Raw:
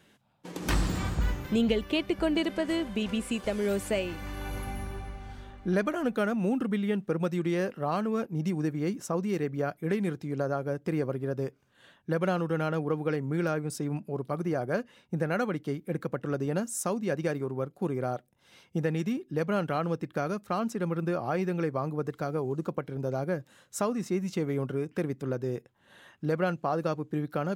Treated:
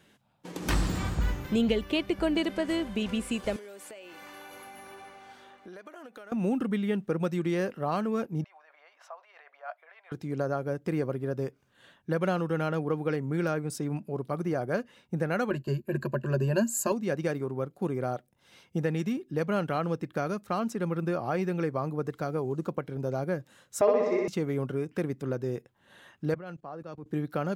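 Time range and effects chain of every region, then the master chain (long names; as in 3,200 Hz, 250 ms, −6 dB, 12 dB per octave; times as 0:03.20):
0:03.56–0:06.32: high-pass filter 430 Hz + downward compressor 12 to 1, threshold −42 dBFS
0:08.44–0:10.12: high-frequency loss of the air 360 metres + compressor whose output falls as the input rises −35 dBFS + Chebyshev high-pass filter 630 Hz, order 5
0:15.50–0:16.92: EQ curve with evenly spaced ripples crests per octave 1.4, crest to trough 17 dB + noise gate −41 dBFS, range −8 dB
0:23.81–0:24.28: loudspeaker in its box 400–4,500 Hz, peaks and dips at 420 Hz +9 dB, 630 Hz +9 dB, 1,400 Hz −8 dB, 2,000 Hz +8 dB, 3,000 Hz −5 dB, 4,200 Hz −5 dB + flutter between parallel walls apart 10.6 metres, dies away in 1.4 s
0:26.34–0:27.06: high-shelf EQ 8,900 Hz −8.5 dB + output level in coarse steps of 20 dB + multiband upward and downward expander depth 100%
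whole clip: no processing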